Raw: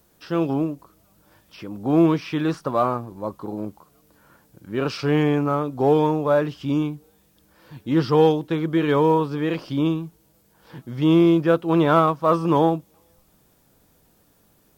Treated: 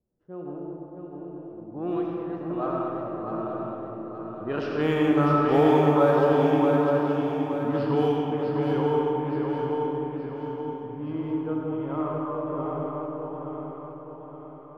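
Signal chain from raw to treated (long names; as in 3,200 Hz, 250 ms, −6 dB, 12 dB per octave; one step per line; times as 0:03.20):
source passing by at 0:05.54, 22 m/s, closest 28 metres
dynamic equaliser 110 Hz, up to −4 dB, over −37 dBFS, Q 0.79
low-pass that shuts in the quiet parts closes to 460 Hz, open at −17.5 dBFS
feedback echo with a long and a short gap by turns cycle 872 ms, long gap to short 3 to 1, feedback 45%, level −4.5 dB
convolution reverb RT60 2.9 s, pre-delay 40 ms, DRR −1.5 dB
level −3.5 dB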